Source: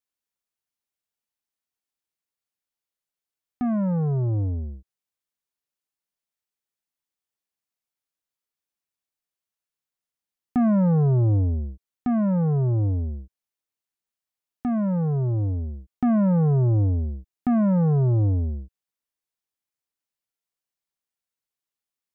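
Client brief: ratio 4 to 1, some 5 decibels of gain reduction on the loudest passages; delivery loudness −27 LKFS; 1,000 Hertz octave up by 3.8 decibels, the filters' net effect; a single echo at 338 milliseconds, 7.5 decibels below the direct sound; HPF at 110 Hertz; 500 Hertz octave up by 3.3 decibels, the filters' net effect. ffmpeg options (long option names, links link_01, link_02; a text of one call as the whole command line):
ffmpeg -i in.wav -af "highpass=110,equalizer=frequency=500:width_type=o:gain=3,equalizer=frequency=1000:width_type=o:gain=4,acompressor=threshold=-21dB:ratio=4,aecho=1:1:338:0.422,volume=-0.5dB" out.wav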